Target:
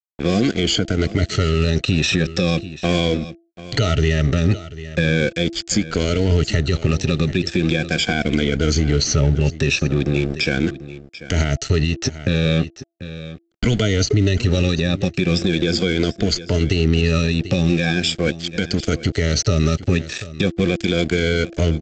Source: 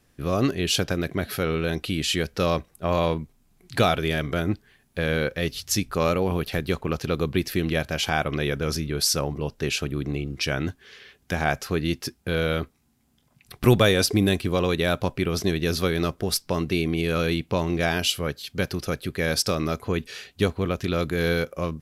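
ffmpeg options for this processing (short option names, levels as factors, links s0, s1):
-filter_complex "[0:a]afftfilt=real='re*pow(10,19/40*sin(2*PI*(1.8*log(max(b,1)*sr/1024/100)/log(2)-(-0.39)*(pts-256)/sr)))':imag='im*pow(10,19/40*sin(2*PI*(1.8*log(max(b,1)*sr/1024/100)/log(2)-(-0.39)*(pts-256)/sr)))':win_size=1024:overlap=0.75,equalizer=f=66:t=o:w=2.9:g=4,aresample=16000,aeval=exprs='sgn(val(0))*max(abs(val(0))-0.0188,0)':c=same,aresample=44100,acrossover=split=370|2000[s0][s1][s2];[s0]acompressor=threshold=0.0631:ratio=4[s3];[s1]acompressor=threshold=0.0224:ratio=4[s4];[s2]acompressor=threshold=0.0251:ratio=4[s5];[s3][s4][s5]amix=inputs=3:normalize=0,equalizer=f=990:t=o:w=0.48:g=-14.5,bandreject=f=336.4:t=h:w=4,bandreject=f=672.8:t=h:w=4,agate=range=0.0178:threshold=0.00355:ratio=16:detection=peak,aecho=1:1:739:0.126,areverse,acompressor=mode=upward:threshold=0.0112:ratio=2.5,areverse,alimiter=level_in=8.41:limit=0.891:release=50:level=0:latency=1,volume=0.447"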